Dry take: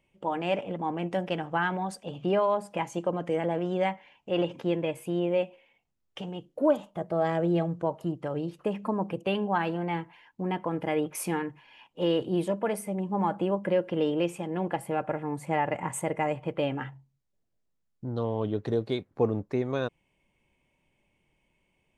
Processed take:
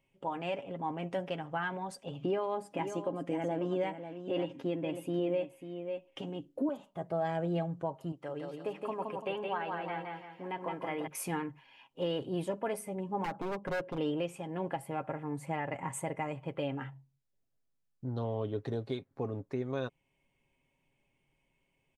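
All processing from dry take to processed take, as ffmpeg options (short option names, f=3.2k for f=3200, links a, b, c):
-filter_complex "[0:a]asettb=1/sr,asplit=3[a][b][c];[a]atrim=end=2.214[d];[b]atrim=start=2.21:end=6.69,asetpts=PTS-STARTPTS,afade=t=in:d=0.004:c=qsin,afade=t=out:st=4.476:d=0.004:c=qsin,equalizer=f=290:t=o:w=0.52:g=12,aecho=1:1:544:0.299,atrim=end_sample=197568[e];[c]atrim=start=6.686[f];[d][e]acrossfade=d=0.004:c1=hsin:c2=qsin[g];[g][f]acrossfade=d=0.004:c1=qsin:c2=hsin,asettb=1/sr,asplit=3[h][i][j];[h]atrim=end=8.124[k];[i]atrim=start=8.12:end=11.07,asetpts=PTS-STARTPTS,afade=t=in:d=0.004:c=qsin,afade=t=out:st=2.946:d=0.004:c=qsin,highpass=f=480:p=1,acrossover=split=3000[l][m];[m]acompressor=threshold=-56dB:ratio=4:attack=1:release=60[n];[l][n]amix=inputs=2:normalize=0,aecho=1:1:169|338|507|676|845:0.668|0.261|0.102|0.0396|0.0155,atrim=end_sample=130095[o];[j]atrim=start=11.066[p];[k][o]acrossfade=d=0.004:c1=hsin:c2=qsin[q];[q][p]acrossfade=d=0.004:c1=qsin:c2=hsin,asettb=1/sr,asplit=3[r][s][t];[r]atrim=end=13.244[u];[s]atrim=start=13.24:end=13.98,asetpts=PTS-STARTPTS,afade=t=in:d=0.004:c=qsin,afade=t=out:st=0.736:d=0.004:c=qsin,highshelf=f=2k:g=-11,aeval=exprs='0.0596*(abs(mod(val(0)/0.0596+3,4)-2)-1)':c=same[v];[t]atrim=start=13.976[w];[u][v]acrossfade=d=0.004:c1=hsin:c2=qsin[x];[x][w]acrossfade=d=0.004:c1=qsin:c2=hsin,aecho=1:1:7.4:0.44,alimiter=limit=-18.5dB:level=0:latency=1:release=406,volume=-5dB"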